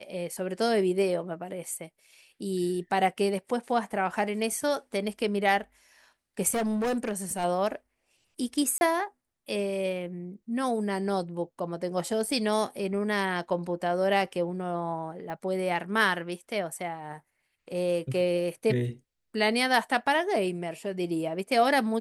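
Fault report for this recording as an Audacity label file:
6.510000	7.450000	clipped -25 dBFS
8.780000	8.810000	gap 31 ms
15.300000	15.300000	pop -25 dBFS

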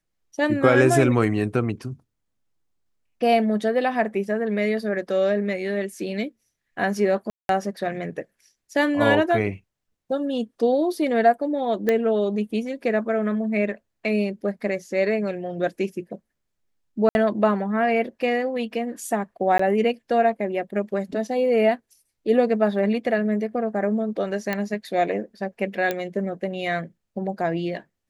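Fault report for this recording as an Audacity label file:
7.300000	7.490000	gap 0.192 s
11.890000	11.890000	pop -10 dBFS
17.090000	17.150000	gap 61 ms
19.580000	19.590000	gap 14 ms
24.530000	24.530000	pop -12 dBFS
25.910000	25.910000	pop -11 dBFS

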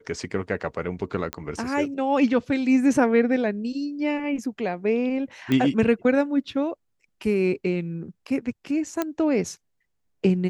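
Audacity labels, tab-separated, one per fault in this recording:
1.330000	1.330000	pop -12 dBFS
5.520000	5.520000	pop -12 dBFS
9.020000	9.020000	pop -11 dBFS

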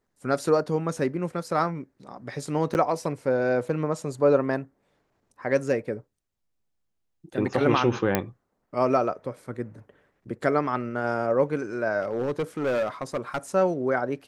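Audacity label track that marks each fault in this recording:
2.740000	2.750000	gap 9.6 ms
8.150000	8.150000	pop -7 dBFS
12.020000	13.380000	clipped -22 dBFS

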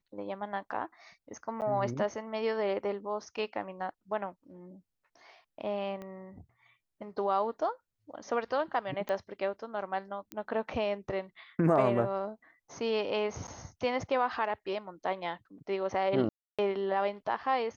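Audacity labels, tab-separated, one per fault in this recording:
1.610000	1.620000	gap 8.8 ms
6.020000	6.020000	pop -30 dBFS
9.090000	9.090000	pop -22 dBFS
10.320000	10.320000	pop -22 dBFS
13.470000	13.480000	gap 9.3 ms
16.290000	16.590000	gap 0.296 s

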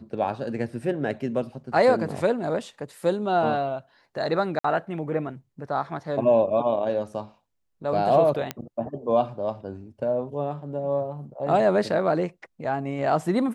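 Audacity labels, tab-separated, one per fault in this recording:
4.590000	4.640000	gap 54 ms
8.510000	8.510000	pop -12 dBFS

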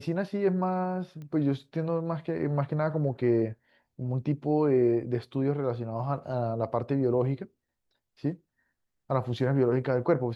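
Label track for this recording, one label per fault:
1.220000	1.220000	pop -32 dBFS

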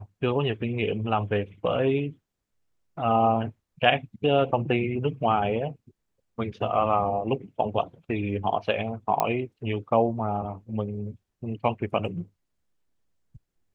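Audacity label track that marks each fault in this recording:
9.200000	9.200000	pop -10 dBFS

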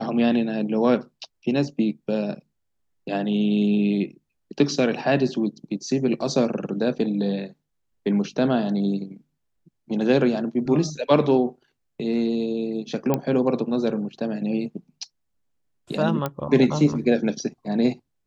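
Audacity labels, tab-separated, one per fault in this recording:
13.140000	13.140000	pop -9 dBFS
16.260000	16.260000	pop -12 dBFS

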